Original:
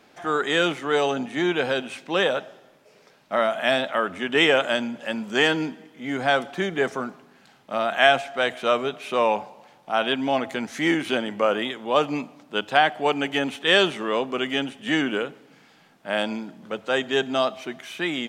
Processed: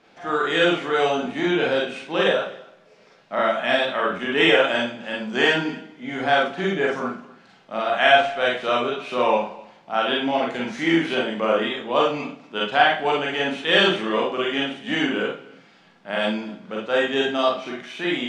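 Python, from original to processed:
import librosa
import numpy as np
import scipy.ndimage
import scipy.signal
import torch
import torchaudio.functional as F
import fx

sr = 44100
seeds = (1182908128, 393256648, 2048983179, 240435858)

y = scipy.signal.sosfilt(scipy.signal.butter(2, 5500.0, 'lowpass', fs=sr, output='sos'), x)
y = y + 10.0 ** (-23.0 / 20.0) * np.pad(y, (int(253 * sr / 1000.0), 0))[:len(y)]
y = fx.rev_schroeder(y, sr, rt60_s=0.35, comb_ms=33, drr_db=-3.5)
y = F.gain(torch.from_numpy(y), -3.0).numpy()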